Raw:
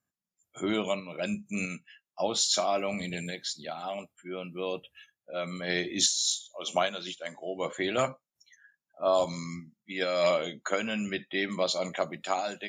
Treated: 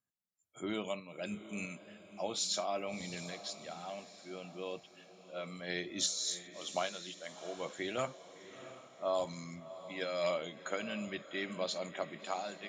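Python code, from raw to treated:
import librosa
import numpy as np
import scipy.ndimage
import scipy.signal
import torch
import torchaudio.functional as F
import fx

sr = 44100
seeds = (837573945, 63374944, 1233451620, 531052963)

y = fx.echo_diffused(x, sr, ms=693, feedback_pct=45, wet_db=-13.5)
y = F.gain(torch.from_numpy(y), -8.5).numpy()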